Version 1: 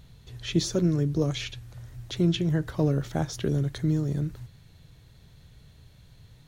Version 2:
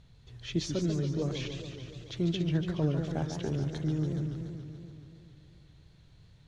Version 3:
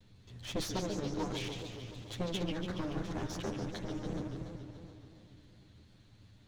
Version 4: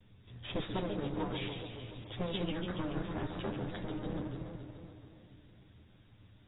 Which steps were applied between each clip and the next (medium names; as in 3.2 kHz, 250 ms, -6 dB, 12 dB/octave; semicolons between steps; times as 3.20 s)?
low-pass 6.7 kHz 12 dB/octave; modulated delay 142 ms, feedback 72%, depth 199 cents, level -7.5 dB; trim -6.5 dB
comb filter that takes the minimum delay 9.8 ms
AAC 16 kbps 16 kHz